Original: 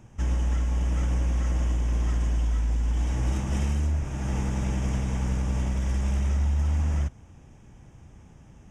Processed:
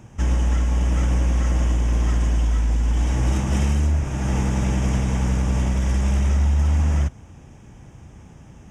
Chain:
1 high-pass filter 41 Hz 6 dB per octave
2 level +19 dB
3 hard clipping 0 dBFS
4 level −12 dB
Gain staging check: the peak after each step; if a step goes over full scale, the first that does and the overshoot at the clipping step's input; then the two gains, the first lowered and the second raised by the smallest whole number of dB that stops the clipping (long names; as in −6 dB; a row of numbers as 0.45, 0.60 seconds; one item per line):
−16.0, +3.0, 0.0, −12.0 dBFS
step 2, 3.0 dB
step 2 +16 dB, step 4 −9 dB